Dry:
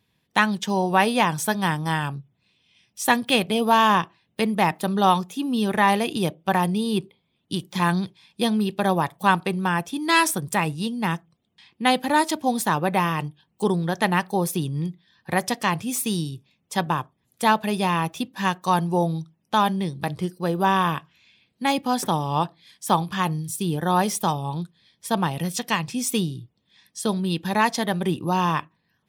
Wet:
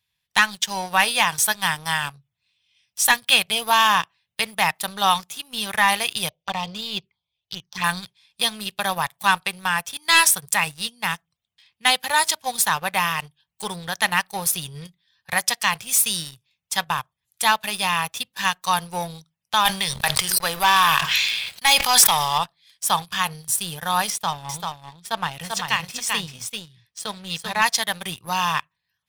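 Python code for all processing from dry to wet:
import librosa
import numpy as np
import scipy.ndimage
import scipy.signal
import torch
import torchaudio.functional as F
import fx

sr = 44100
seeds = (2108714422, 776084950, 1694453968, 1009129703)

y = fx.chain(x, sr, fx.brickwall_lowpass(high_hz=6500.0),
    fx.env_phaser(low_hz=190.0, high_hz=1600.0, full_db=-19.5), at=(6.29, 7.84))
y = fx.chain(y, sr, fx.low_shelf(hz=370.0, db=-12.0),
    fx.leveller(passes=2),
    fx.sustainer(db_per_s=30.0), at=(19.65, 22.38))
y = fx.chain(y, sr, fx.lowpass(hz=2900.0, slope=6),
    fx.echo_single(ms=390, db=-4.0), at=(24.1, 27.62))
y = fx.tone_stack(y, sr, knobs='10-0-10')
y = fx.leveller(y, sr, passes=2)
y = y * 10.0 ** (2.5 / 20.0)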